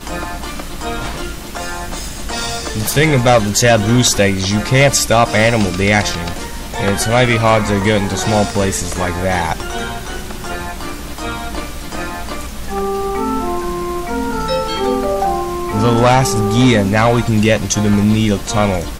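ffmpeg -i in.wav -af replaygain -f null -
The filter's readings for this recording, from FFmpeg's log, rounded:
track_gain = -4.8 dB
track_peak = 0.447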